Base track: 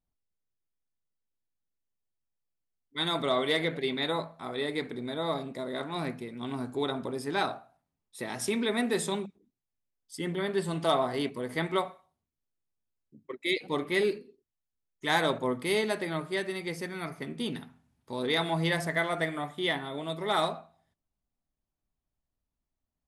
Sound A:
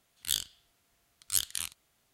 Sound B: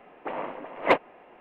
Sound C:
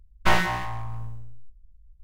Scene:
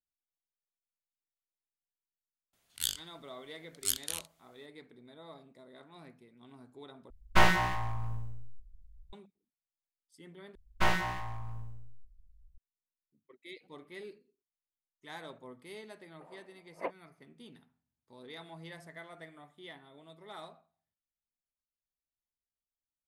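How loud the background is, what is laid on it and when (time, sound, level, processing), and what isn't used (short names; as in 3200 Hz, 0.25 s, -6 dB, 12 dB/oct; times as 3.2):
base track -19.5 dB
2.53 add A -3 dB
7.1 replace with C -2.5 dB
10.55 replace with C -7.5 dB
15.94 add B -17.5 dB + spectral expander 1.5:1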